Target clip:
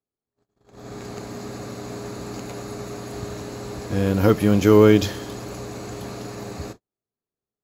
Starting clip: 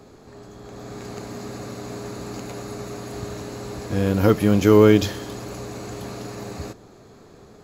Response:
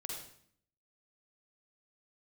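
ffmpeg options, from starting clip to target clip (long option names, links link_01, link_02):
-af "agate=range=-46dB:threshold=-37dB:ratio=16:detection=peak"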